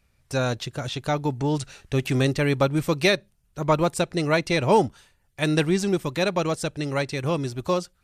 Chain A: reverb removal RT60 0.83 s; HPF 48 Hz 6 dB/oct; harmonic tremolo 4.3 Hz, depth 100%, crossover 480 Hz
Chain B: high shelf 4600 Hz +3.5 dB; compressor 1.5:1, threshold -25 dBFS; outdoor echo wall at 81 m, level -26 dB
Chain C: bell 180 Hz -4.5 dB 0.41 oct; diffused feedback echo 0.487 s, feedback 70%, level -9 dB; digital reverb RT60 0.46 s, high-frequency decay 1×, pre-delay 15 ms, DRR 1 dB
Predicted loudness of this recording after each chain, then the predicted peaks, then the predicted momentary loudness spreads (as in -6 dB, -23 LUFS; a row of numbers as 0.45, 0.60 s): -30.5, -27.0, -22.0 LUFS; -12.0, -10.0, -5.0 dBFS; 11, 6, 7 LU